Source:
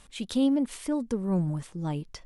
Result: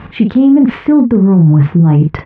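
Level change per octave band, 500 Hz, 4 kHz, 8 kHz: +15.0 dB, can't be measured, below −15 dB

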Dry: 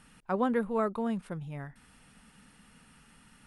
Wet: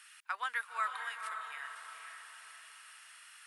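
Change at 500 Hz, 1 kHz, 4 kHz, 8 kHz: −25.5, −2.0, +7.5, +7.0 decibels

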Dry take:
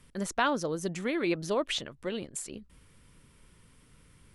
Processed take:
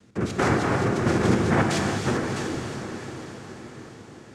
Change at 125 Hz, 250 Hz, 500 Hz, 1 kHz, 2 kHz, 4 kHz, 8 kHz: +17.0, +10.0, +6.5, +7.5, +7.5, +2.0, +4.0 decibels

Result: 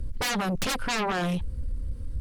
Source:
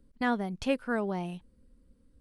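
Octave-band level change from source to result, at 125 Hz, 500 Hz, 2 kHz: +9.0, 0.0, +5.5 decibels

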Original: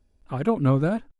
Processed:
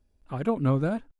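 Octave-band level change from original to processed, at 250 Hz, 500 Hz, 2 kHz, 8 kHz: −3.5 dB, −3.5 dB, −3.5 dB, can't be measured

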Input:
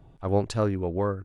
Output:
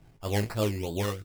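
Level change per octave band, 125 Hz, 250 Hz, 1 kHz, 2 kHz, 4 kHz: −2.0, −3.5, −5.0, +5.0, +5.5 decibels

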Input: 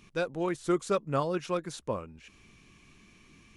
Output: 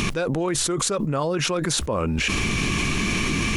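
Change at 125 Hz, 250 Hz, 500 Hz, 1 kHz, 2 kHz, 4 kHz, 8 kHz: +13.5, +10.0, +5.5, +7.0, +17.0, +20.5, +22.0 decibels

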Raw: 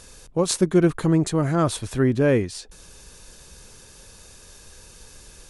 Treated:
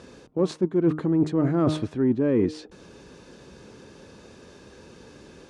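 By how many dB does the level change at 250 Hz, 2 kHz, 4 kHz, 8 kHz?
−0.5 dB, −10.0 dB, −9.0 dB, below −15 dB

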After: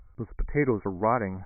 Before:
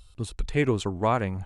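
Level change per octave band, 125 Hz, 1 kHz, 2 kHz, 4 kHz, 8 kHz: −4.0 dB, 0.0 dB, −1.0 dB, below −40 dB, below −40 dB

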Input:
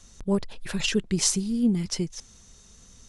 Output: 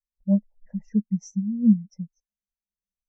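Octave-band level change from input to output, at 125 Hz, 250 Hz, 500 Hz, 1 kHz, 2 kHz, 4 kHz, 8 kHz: +2.0 dB, +4.0 dB, can't be measured, below −15 dB, below −30 dB, below −30 dB, below −20 dB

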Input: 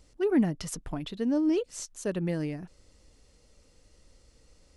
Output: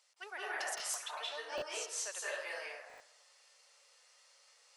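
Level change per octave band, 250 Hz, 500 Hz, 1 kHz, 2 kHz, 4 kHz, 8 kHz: −35.5, −13.0, +0.5, +4.5, +3.0, +1.5 decibels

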